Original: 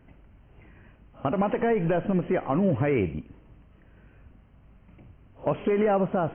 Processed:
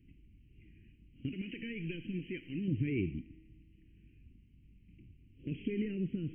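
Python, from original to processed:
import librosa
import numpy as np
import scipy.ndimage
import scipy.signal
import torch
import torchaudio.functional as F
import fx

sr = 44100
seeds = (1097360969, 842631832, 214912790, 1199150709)

y = fx.tilt_shelf(x, sr, db=-7.0, hz=970.0, at=(1.29, 2.68))
y = scipy.signal.sosfilt(scipy.signal.ellip(3, 1.0, 50, [330.0, 2400.0], 'bandstop', fs=sr, output='sos'), y)
y = fx.comb_fb(y, sr, f0_hz=160.0, decay_s=2.0, harmonics='all', damping=0.0, mix_pct=50)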